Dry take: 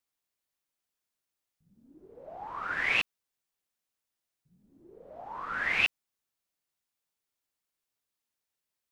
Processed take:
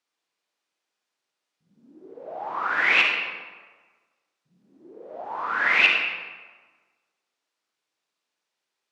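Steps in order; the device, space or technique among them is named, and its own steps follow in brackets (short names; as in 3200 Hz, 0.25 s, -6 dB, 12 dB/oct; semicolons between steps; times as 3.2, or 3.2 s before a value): supermarket ceiling speaker (BPF 260–5800 Hz; reverb RT60 1.4 s, pre-delay 38 ms, DRR 0.5 dB); gain +7 dB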